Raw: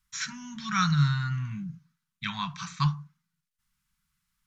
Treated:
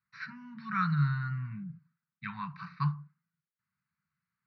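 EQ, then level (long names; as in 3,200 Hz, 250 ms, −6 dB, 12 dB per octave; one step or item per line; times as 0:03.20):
high-pass filter 100 Hz 24 dB per octave
Butterworth low-pass 4,600 Hz 72 dB per octave
phaser with its sweep stopped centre 1,400 Hz, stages 4
−3.5 dB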